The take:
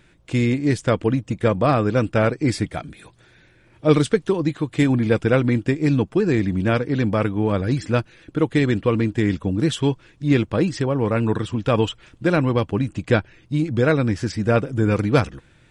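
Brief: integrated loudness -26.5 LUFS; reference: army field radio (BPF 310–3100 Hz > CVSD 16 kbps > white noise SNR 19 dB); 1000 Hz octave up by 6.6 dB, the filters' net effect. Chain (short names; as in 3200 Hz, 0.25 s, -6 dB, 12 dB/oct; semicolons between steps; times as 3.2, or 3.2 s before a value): BPF 310–3100 Hz; bell 1000 Hz +9 dB; CVSD 16 kbps; white noise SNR 19 dB; gain -2 dB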